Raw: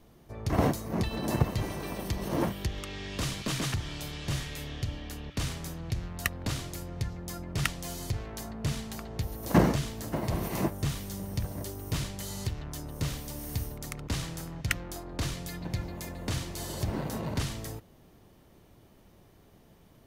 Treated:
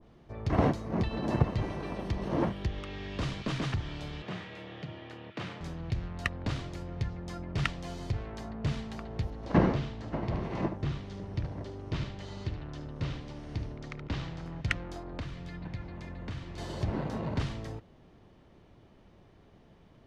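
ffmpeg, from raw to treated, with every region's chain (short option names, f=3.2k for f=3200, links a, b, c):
-filter_complex "[0:a]asettb=1/sr,asplit=3[a][b][c];[a]atrim=end=4.224[d];[b]atrim=start=4.22:end=5.61,asetpts=PTS-STARTPTS,afade=t=in:d=0.004:c=qsin,afade=t=out:st=1.386:d=0.004:c=qsin,highpass=46,bass=f=250:g=-9,treble=f=4k:g=-11,afreqshift=44[e];[c]atrim=start=5.606[f];[d][e]acrossfade=d=0.004:c1=hsin:c2=qsin[g];[g][f]acrossfade=d=0.004:c1=qsin:c2=hsin,asettb=1/sr,asplit=3[h][i][j];[h]atrim=end=9.304[k];[i]atrim=start=9.3:end=14.46,asetpts=PTS-STARTPTS,afade=t=in:d=0.004:c=qsin,afade=t=out:st=5.156:d=0.004:c=qsin,lowpass=5.3k,tremolo=f=220:d=0.462,aecho=1:1:74:0.299,atrim=end_sample=227556[l];[j]atrim=start=14.456[m];[k][l]acrossfade=d=0.004:c1=hsin:c2=qsin[n];[n][m]acrossfade=d=0.004:c1=qsin:c2=hsin,asettb=1/sr,asplit=3[o][p][q];[o]atrim=end=15.194[r];[p]atrim=start=15.19:end=16.58,asetpts=PTS-STARTPTS,afade=t=in:d=0.004:c=qsin,afade=t=out:st=1.386:d=0.004:c=qsin,acrossover=split=170|440|950|7300[s][t][u][v][w];[s]acompressor=threshold=-38dB:ratio=3[x];[t]acompressor=threshold=-48dB:ratio=3[y];[u]acompressor=threshold=-60dB:ratio=3[z];[v]acompressor=threshold=-44dB:ratio=3[aa];[w]acompressor=threshold=-47dB:ratio=3[ab];[x][y][z][aa][ab]amix=inputs=5:normalize=0,highshelf=f=4.5k:g=-11.5[ac];[q]atrim=start=16.576[ad];[r][ac]acrossfade=d=0.004:c1=hsin:c2=qsin[ae];[ae][ad]acrossfade=d=0.004:c1=qsin:c2=hsin,lowpass=3.8k,adynamicequalizer=threshold=0.00398:dfrequency=1500:dqfactor=0.7:tfrequency=1500:tqfactor=0.7:attack=5:release=100:ratio=0.375:range=1.5:mode=cutabove:tftype=highshelf"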